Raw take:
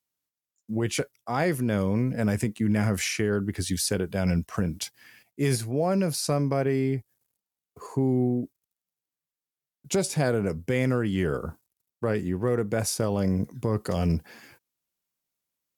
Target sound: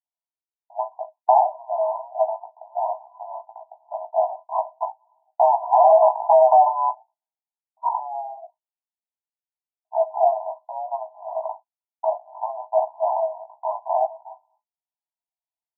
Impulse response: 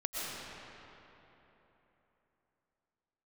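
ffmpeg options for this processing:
-filter_complex "[0:a]agate=range=-29dB:threshold=-41dB:ratio=16:detection=peak,acompressor=threshold=-31dB:ratio=20,asettb=1/sr,asplit=3[a][b][c];[a]atrim=end=4.794[d];[b]atrim=start=4.79:end=6.89,asetpts=PTS-STARTPTS,afade=t=in:d=0.004:c=qsin,afade=t=out:st=2.096:d=0.004:c=qsin,aeval=exprs='0.0891*sin(PI/2*2.82*val(0)/0.0891)':c=same[e];[c]atrim=start=6.886[f];[d][e]acrossfade=d=0.004:c1=hsin:c2=qsin[g];[g][f]acrossfade=d=0.004:c1=qsin:c2=hsin,aeval=exprs='val(0)*sin(2*PI*67*n/s)':c=same,asuperpass=centerf=800:order=20:qfactor=2.1,asplit=2[h][i];[i]adelay=17,volume=-3dB[j];[h][j]amix=inputs=2:normalize=0,aecho=1:1:19|35:0.178|0.15,alimiter=level_in=33.5dB:limit=-1dB:release=50:level=0:latency=1,volume=-5.5dB"

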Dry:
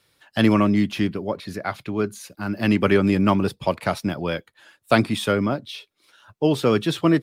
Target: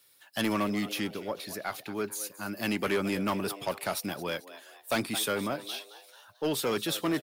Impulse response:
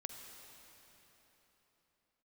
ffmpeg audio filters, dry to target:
-filter_complex "[0:a]aemphasis=mode=production:type=bsi,asplit=5[a][b][c][d][e];[b]adelay=220,afreqshift=100,volume=-16.5dB[f];[c]adelay=440,afreqshift=200,volume=-23.6dB[g];[d]adelay=660,afreqshift=300,volume=-30.8dB[h];[e]adelay=880,afreqshift=400,volume=-37.9dB[i];[a][f][g][h][i]amix=inputs=5:normalize=0,asoftclip=type=tanh:threshold=-16.5dB,volume=-5.5dB"

